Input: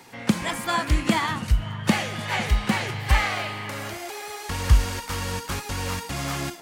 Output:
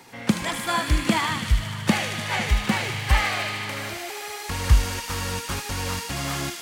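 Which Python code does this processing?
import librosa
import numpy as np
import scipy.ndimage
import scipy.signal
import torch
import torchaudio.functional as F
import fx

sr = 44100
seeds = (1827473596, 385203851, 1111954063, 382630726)

y = fx.echo_wet_highpass(x, sr, ms=76, feedback_pct=84, hz=2100.0, wet_db=-6.0)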